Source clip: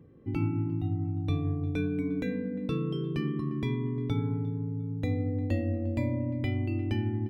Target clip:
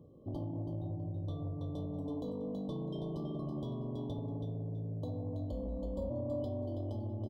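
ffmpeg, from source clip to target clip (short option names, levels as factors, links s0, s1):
-filter_complex "[0:a]aecho=1:1:327|654|981:0.501|0.0902|0.0162,acompressor=threshold=0.0282:ratio=4,asoftclip=type=tanh:threshold=0.0299,equalizer=f=610:t=o:w=0.33:g=13,asplit=3[s0][s1][s2];[s0]afade=t=out:st=5.51:d=0.02[s3];[s1]afreqshift=-40,afade=t=in:st=5.51:d=0.02,afade=t=out:st=6.09:d=0.02[s4];[s2]afade=t=in:st=6.09:d=0.02[s5];[s3][s4][s5]amix=inputs=3:normalize=0,afftfilt=real='re*(1-between(b*sr/4096,1200,3000))':imag='im*(1-between(b*sr/4096,1200,3000))':win_size=4096:overlap=0.75,volume=0.708"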